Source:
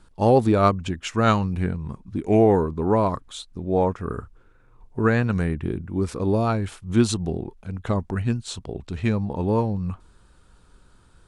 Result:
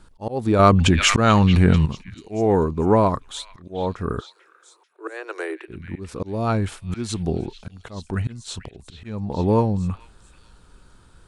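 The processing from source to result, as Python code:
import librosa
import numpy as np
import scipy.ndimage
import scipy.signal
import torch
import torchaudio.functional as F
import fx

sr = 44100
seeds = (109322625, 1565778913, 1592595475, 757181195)

y = fx.auto_swell(x, sr, attack_ms=354.0)
y = fx.cheby1_highpass(y, sr, hz=320.0, order=8, at=(4.19, 5.68), fade=0.02)
y = fx.echo_stepped(y, sr, ms=439, hz=2600.0, octaves=0.7, feedback_pct=70, wet_db=-8)
y = fx.env_flatten(y, sr, amount_pct=70, at=(0.59, 1.86))
y = y * 10.0 ** (3.5 / 20.0)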